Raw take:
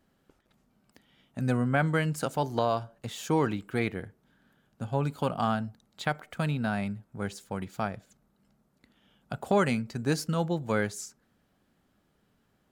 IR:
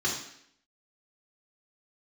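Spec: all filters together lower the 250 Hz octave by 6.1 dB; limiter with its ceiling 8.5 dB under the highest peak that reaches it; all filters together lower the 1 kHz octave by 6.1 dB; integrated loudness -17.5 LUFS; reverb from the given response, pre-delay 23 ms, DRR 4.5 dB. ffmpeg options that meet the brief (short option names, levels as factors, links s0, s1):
-filter_complex "[0:a]equalizer=f=250:t=o:g=-8.5,equalizer=f=1000:t=o:g=-8,alimiter=level_in=1.12:limit=0.0631:level=0:latency=1,volume=0.891,asplit=2[s0][s1];[1:a]atrim=start_sample=2205,adelay=23[s2];[s1][s2]afir=irnorm=-1:irlink=0,volume=0.211[s3];[s0][s3]amix=inputs=2:normalize=0,volume=7.94"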